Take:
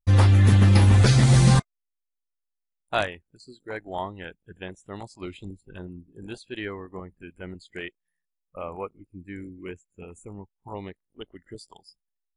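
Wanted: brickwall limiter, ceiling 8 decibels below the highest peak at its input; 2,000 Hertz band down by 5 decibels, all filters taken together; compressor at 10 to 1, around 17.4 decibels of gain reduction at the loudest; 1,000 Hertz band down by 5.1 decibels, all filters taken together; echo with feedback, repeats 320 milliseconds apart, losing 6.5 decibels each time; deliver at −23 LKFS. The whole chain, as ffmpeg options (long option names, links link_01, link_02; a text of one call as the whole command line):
ffmpeg -i in.wav -af "equalizer=frequency=1000:width_type=o:gain=-6,equalizer=frequency=2000:width_type=o:gain=-4.5,acompressor=threshold=-31dB:ratio=10,alimiter=level_in=4.5dB:limit=-24dB:level=0:latency=1,volume=-4.5dB,aecho=1:1:320|640|960|1280|1600|1920:0.473|0.222|0.105|0.0491|0.0231|0.0109,volume=17dB" out.wav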